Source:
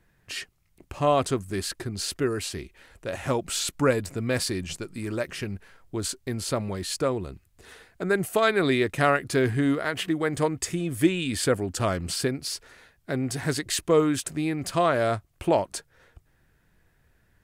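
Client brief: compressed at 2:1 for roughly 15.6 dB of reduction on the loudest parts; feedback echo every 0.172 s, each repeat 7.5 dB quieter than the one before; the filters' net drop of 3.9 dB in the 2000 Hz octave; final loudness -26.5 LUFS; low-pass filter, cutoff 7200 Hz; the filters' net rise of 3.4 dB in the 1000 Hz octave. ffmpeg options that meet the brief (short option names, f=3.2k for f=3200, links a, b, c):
-af "lowpass=7.2k,equalizer=f=1k:t=o:g=7,equalizer=f=2k:t=o:g=-8.5,acompressor=threshold=-44dB:ratio=2,aecho=1:1:172|344|516|688|860:0.422|0.177|0.0744|0.0312|0.0131,volume=11.5dB"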